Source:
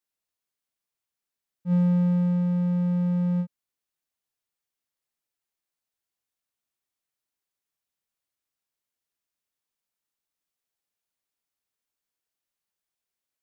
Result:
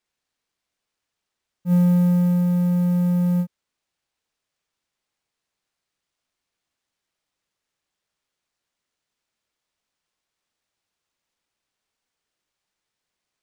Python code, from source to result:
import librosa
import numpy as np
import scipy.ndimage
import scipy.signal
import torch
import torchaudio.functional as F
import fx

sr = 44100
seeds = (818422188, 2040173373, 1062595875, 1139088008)

y = fx.sample_hold(x, sr, seeds[0], rate_hz=14000.0, jitter_pct=20)
y = y * 10.0 ** (4.5 / 20.0)